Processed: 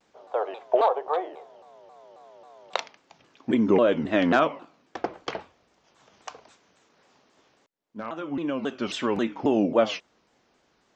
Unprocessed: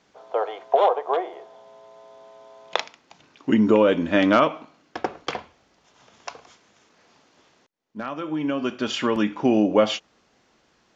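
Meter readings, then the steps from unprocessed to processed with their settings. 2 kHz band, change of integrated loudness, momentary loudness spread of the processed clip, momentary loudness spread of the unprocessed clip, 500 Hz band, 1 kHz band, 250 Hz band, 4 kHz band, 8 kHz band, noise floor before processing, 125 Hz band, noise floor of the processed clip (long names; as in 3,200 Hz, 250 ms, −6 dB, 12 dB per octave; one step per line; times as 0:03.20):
−3.0 dB, −3.0 dB, 18 LU, 18 LU, −2.5 dB, −3.0 dB, −4.0 dB, −5.5 dB, can't be measured, −64 dBFS, −4.0 dB, −67 dBFS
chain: parametric band 550 Hz +2.5 dB 2.2 octaves
pitch modulation by a square or saw wave saw down 3.7 Hz, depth 250 cents
level −5 dB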